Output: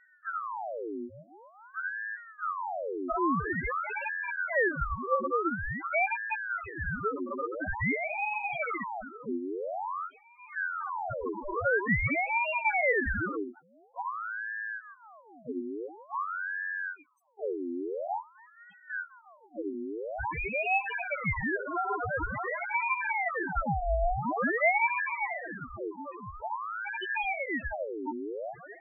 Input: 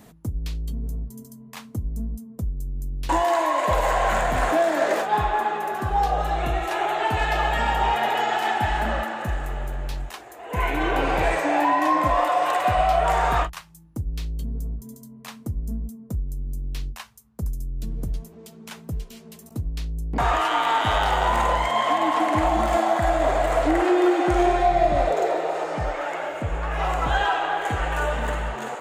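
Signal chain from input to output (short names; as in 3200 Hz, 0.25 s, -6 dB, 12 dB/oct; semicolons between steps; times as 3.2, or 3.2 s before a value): loudest bins only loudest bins 1; dynamic EQ 940 Hz, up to +4 dB, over -40 dBFS, Q 1.1; ring modulator with a swept carrier 1000 Hz, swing 70%, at 0.48 Hz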